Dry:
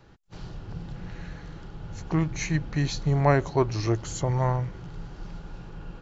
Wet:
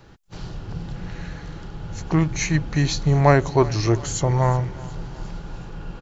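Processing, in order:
high-shelf EQ 5,400 Hz +4.5 dB
repeating echo 366 ms, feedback 53%, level −20.5 dB
level +5.5 dB

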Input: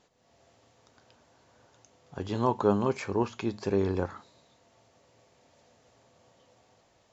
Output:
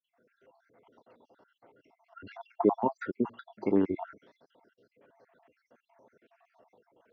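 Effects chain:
time-frequency cells dropped at random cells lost 64%
formants moved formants −3 semitones
three-way crossover with the lows and the highs turned down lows −20 dB, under 200 Hz, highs −19 dB, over 2,400 Hz
level +4 dB

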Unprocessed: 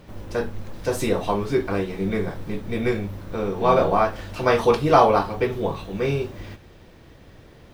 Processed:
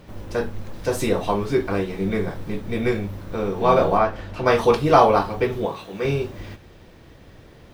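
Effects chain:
0:03.97–0:04.45: high-shelf EQ 5,600 Hz → 3,800 Hz −11.5 dB
0:05.65–0:06.05: high-pass filter 360 Hz 6 dB per octave
level +1 dB

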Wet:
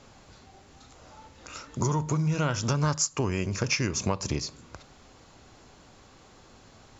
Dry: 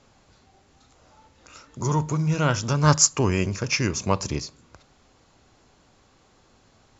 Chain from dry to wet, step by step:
downward compressor 12 to 1, threshold −28 dBFS, peak gain reduction 16.5 dB
level +5 dB

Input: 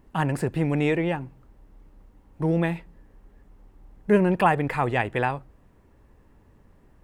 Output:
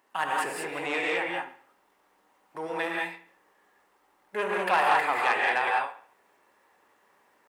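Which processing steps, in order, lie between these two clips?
tempo change 0.94×
delay with a low-pass on its return 69 ms, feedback 39%, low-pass 3,700 Hz, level −13.5 dB
reverb whose tail is shaped and stops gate 220 ms rising, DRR −2 dB
soft clipping −13 dBFS, distortion −15 dB
high-pass filter 810 Hz 12 dB per octave
level +1 dB

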